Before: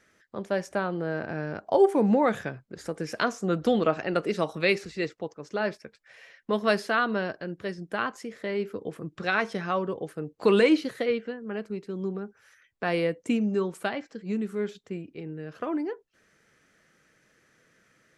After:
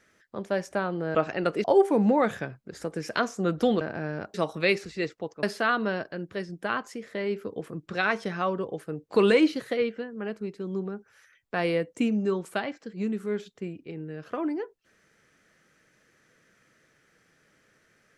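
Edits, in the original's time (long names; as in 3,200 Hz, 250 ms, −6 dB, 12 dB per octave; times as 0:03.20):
0:01.15–0:01.68: swap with 0:03.85–0:04.34
0:05.43–0:06.72: remove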